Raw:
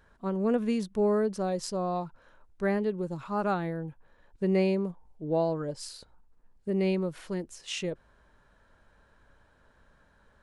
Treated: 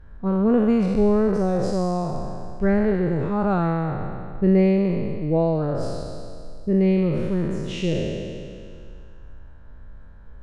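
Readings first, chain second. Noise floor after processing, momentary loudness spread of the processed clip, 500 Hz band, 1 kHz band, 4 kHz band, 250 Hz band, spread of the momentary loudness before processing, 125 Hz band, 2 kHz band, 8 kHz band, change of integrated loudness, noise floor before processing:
-41 dBFS, 15 LU, +7.0 dB, +5.5 dB, +2.0 dB, +10.5 dB, 14 LU, +12.0 dB, +5.0 dB, no reading, +8.5 dB, -64 dBFS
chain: spectral sustain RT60 2.25 s; RIAA curve playback; trim +1.5 dB

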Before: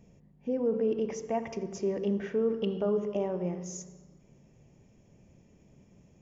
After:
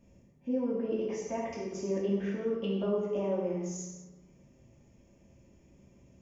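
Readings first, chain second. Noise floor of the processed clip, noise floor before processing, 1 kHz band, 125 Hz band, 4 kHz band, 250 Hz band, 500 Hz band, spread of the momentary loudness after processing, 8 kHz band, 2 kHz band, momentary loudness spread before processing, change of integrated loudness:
-62 dBFS, -61 dBFS, -2.0 dB, -0.5 dB, -0.5 dB, -0.5 dB, -2.5 dB, 8 LU, no reading, -0.5 dB, 10 LU, -1.5 dB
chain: gated-style reverb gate 280 ms falling, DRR -6 dB; trim -7 dB

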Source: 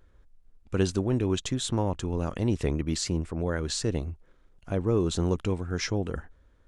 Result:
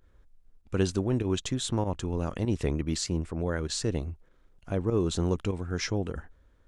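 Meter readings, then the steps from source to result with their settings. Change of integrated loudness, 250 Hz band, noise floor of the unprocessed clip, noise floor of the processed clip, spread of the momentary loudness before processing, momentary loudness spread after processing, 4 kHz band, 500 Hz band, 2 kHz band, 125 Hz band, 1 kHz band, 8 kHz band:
-1.5 dB, -1.5 dB, -60 dBFS, -61 dBFS, 8 LU, 7 LU, -1.0 dB, -1.5 dB, -1.0 dB, -1.5 dB, -1.5 dB, -1.0 dB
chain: volume shaper 98 bpm, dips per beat 1, -10 dB, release 73 ms; trim -1 dB

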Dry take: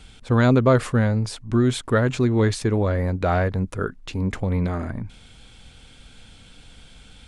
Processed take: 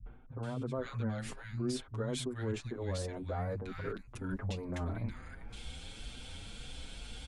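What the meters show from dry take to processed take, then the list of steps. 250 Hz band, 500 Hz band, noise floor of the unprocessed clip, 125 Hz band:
-17.5 dB, -17.0 dB, -49 dBFS, -16.5 dB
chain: reverse; compression 5:1, threshold -35 dBFS, peak gain reduction 20.5 dB; reverse; three bands offset in time lows, mids, highs 60/430 ms, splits 160/1500 Hz; peak limiter -30 dBFS, peak gain reduction 6.5 dB; endless flanger 6.7 ms +2 Hz; trim +4.5 dB

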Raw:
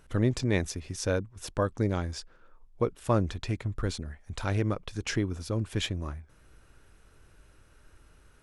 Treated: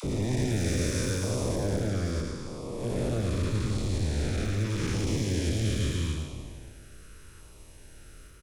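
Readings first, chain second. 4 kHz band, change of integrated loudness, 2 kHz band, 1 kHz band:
+1.5 dB, +1.5 dB, -1.0 dB, -4.5 dB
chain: spectral blur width 730 ms; in parallel at -2 dB: level held to a coarse grid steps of 20 dB; on the sum: treble shelf 5 kHz +7.5 dB; hard clipper -28 dBFS, distortion -13 dB; phase dispersion lows, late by 41 ms, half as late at 690 Hz; LFO notch saw down 0.81 Hz 610–1800 Hz; on a send: delay 109 ms -5.5 dB; on the sum: trim +4.5 dB

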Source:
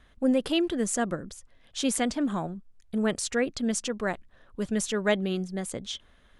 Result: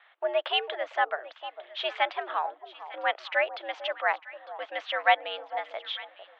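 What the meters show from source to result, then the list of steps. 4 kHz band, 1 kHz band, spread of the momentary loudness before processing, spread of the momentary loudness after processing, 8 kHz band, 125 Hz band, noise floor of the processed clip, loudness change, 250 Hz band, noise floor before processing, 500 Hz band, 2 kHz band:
+2.5 dB, +9.0 dB, 13 LU, 12 LU, under -30 dB, under -40 dB, -60 dBFS, -1.0 dB, -27.5 dB, -60 dBFS, -2.0 dB, +6.0 dB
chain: mistuned SSB +100 Hz 580–3200 Hz; echo whose repeats swap between lows and highs 451 ms, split 1 kHz, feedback 51%, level -11.5 dB; trim +6 dB

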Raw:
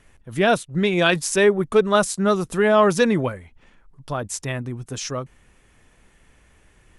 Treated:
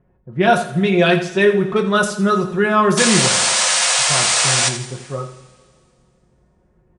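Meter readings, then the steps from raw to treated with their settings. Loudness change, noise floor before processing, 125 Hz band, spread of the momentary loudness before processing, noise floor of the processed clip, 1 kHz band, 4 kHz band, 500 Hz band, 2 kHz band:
+5.5 dB, -57 dBFS, +5.0 dB, 14 LU, -59 dBFS, +5.5 dB, +12.0 dB, +1.5 dB, +6.0 dB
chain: level-controlled noise filter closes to 610 Hz, open at -13 dBFS; high-pass 49 Hz; comb 5.5 ms, depth 54%; painted sound noise, 2.97–4.69 s, 470–9700 Hz -18 dBFS; on a send: feedback delay 84 ms, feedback 37%, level -12 dB; on the sum: two-slope reverb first 0.24 s, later 2.2 s, from -21 dB, DRR 4 dB

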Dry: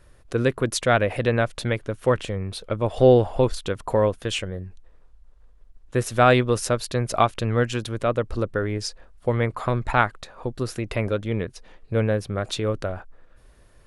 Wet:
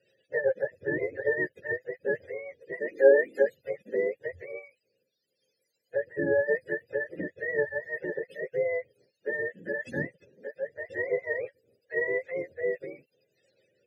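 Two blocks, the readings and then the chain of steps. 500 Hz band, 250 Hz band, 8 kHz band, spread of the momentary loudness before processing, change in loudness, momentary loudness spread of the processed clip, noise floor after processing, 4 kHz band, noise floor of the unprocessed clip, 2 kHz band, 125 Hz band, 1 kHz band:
-4.5 dB, -13.0 dB, under -30 dB, 12 LU, -6.5 dB, 12 LU, -80 dBFS, under -30 dB, -53 dBFS, -2.0 dB, -23.0 dB, -24.5 dB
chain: spectrum inverted on a logarithmic axis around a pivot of 460 Hz; vowel filter e; rotary cabinet horn 7.5 Hz, later 0.9 Hz, at 2.94 s; trim +6.5 dB

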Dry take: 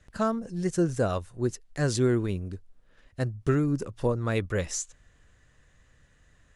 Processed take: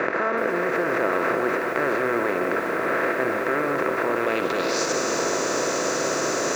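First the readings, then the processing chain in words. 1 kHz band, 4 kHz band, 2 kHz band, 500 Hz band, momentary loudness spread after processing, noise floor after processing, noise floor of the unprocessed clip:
+13.5 dB, +11.0 dB, +16.0 dB, +8.0 dB, 1 LU, -26 dBFS, -62 dBFS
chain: spectral levelling over time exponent 0.2; high-pass 420 Hz 12 dB/octave; treble shelf 3 kHz -7.5 dB; in parallel at -0.5 dB: compressor with a negative ratio -29 dBFS, ratio -0.5; on the sum: low-pass sweep 2 kHz -> 6.2 kHz, 4.08–4.93 s; on a send: multi-head delay 62 ms, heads first and third, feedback 46%, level -12 dB; on the sum: bit-crushed delay 374 ms, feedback 80%, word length 6-bit, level -10.5 dB; trim -3.5 dB

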